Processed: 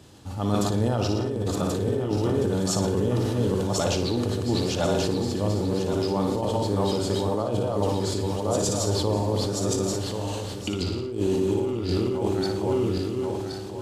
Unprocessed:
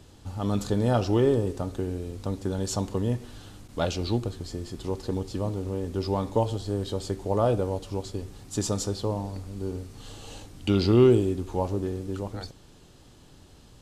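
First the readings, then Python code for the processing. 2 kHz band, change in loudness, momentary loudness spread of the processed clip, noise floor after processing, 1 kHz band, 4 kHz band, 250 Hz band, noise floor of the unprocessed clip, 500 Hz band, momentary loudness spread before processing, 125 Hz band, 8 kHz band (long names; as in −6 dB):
+4.5 dB, +2.0 dB, 5 LU, −33 dBFS, +3.5 dB, +6.5 dB, +3.0 dB, −53 dBFS, +2.5 dB, 15 LU, +2.0 dB, +7.0 dB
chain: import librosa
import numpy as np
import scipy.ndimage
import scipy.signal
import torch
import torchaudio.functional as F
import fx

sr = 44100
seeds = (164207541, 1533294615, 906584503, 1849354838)

p1 = fx.reverse_delay_fb(x, sr, ms=541, feedback_pct=56, wet_db=-2.0)
p2 = scipy.signal.sosfilt(scipy.signal.butter(2, 87.0, 'highpass', fs=sr, output='sos'), p1)
p3 = fx.over_compress(p2, sr, threshold_db=-25.0, ratio=-0.5)
p4 = p3 + fx.room_flutter(p3, sr, wall_m=9.9, rt60_s=0.49, dry=0)
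y = fx.sustainer(p4, sr, db_per_s=22.0)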